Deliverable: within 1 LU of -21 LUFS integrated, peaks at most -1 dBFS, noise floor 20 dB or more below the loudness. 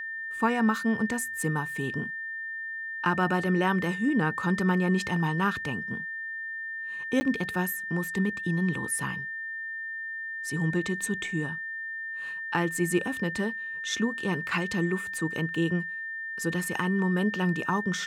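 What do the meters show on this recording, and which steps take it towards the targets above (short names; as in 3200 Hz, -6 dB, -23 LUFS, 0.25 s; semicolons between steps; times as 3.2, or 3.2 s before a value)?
dropouts 1; longest dropout 10 ms; steady tone 1800 Hz; tone level -33 dBFS; loudness -29.0 LUFS; peak -13.0 dBFS; loudness target -21.0 LUFS
-> interpolate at 7.2, 10 ms; notch 1800 Hz, Q 30; gain +8 dB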